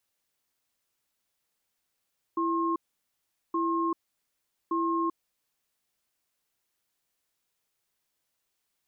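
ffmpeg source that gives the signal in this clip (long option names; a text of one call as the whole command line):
ffmpeg -f lavfi -i "aevalsrc='0.0422*(sin(2*PI*333*t)+sin(2*PI*1070*t))*clip(min(mod(t,1.17),0.39-mod(t,1.17))/0.005,0,1)':duration=3.41:sample_rate=44100" out.wav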